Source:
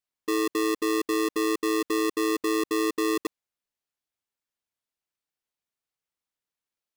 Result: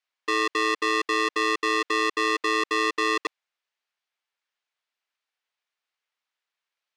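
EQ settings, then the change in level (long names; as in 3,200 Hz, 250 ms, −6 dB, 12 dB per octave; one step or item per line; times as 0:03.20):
band-pass filter 580–5,300 Hz
parametric band 2,100 Hz +5 dB 2 octaves
+4.5 dB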